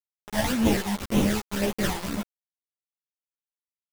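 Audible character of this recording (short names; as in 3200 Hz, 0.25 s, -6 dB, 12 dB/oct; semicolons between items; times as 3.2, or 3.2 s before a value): aliases and images of a low sample rate 1200 Hz, jitter 20%; phasing stages 12, 1.9 Hz, lowest notch 410–1600 Hz; a quantiser's noise floor 6-bit, dither none; a shimmering, thickened sound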